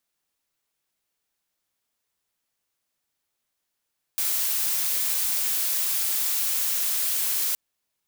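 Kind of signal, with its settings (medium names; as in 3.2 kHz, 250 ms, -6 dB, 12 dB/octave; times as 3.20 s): noise blue, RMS -25 dBFS 3.37 s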